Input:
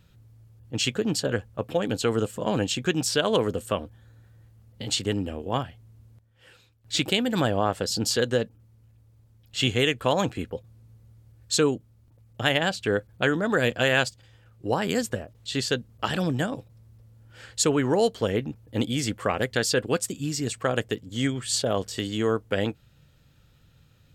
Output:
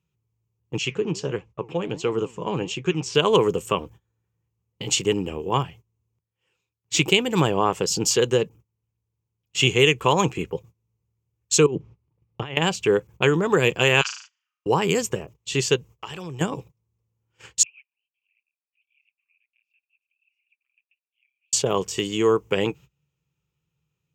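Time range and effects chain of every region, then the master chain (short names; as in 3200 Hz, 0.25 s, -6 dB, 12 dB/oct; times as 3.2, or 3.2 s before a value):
0.78–3.15 flange 1.5 Hz, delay 2.8 ms, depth 9.2 ms, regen +85% + air absorption 95 m
11.66–12.57 negative-ratio compressor -33 dBFS + air absorption 210 m
14.01–14.66 elliptic band-pass 1200–6200 Hz, stop band 50 dB + flutter echo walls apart 6.4 m, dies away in 0.53 s
15.76–16.41 bell 220 Hz -10 dB 1 oct + compressor 4:1, threshold -37 dBFS
17.63–21.53 compressor 4:1, threshold -26 dBFS + Butterworth band-pass 2500 Hz, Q 7.7 + tape flanging out of phase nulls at 1.8 Hz, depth 4 ms
whole clip: HPF 77 Hz 12 dB/oct; gate -45 dBFS, range -23 dB; ripple EQ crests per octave 0.74, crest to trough 11 dB; gain +3 dB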